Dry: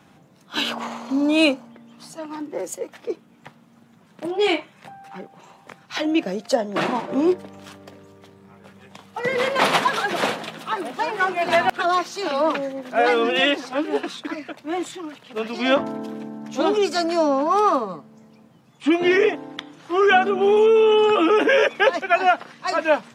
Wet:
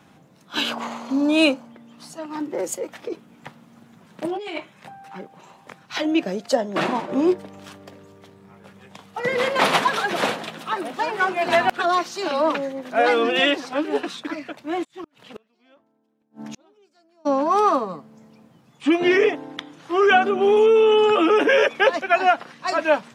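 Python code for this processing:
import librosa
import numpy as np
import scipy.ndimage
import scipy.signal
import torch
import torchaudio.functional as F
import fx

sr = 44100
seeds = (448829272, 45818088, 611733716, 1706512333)

y = fx.over_compress(x, sr, threshold_db=-27.0, ratio=-1.0, at=(2.35, 4.58))
y = fx.gate_flip(y, sr, shuts_db=-25.0, range_db=-38, at=(14.83, 17.25), fade=0.02)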